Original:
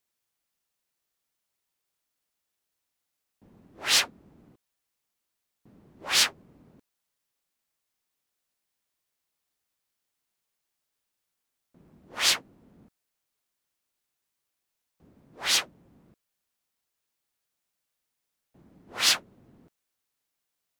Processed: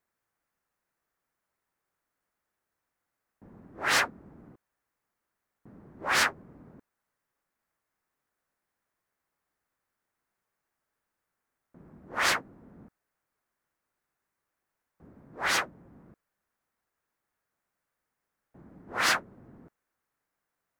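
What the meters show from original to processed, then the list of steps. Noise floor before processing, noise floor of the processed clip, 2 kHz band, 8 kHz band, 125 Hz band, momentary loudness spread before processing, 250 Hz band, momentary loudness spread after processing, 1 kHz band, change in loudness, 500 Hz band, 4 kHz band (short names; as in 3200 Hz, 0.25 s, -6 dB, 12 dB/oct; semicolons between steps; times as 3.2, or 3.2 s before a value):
-83 dBFS, under -85 dBFS, +3.0 dB, -7.0 dB, +4.5 dB, 14 LU, +4.5 dB, 13 LU, +6.5 dB, -3.5 dB, +5.0 dB, -8.0 dB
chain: resonant high shelf 2300 Hz -10.5 dB, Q 1.5; gain +4.5 dB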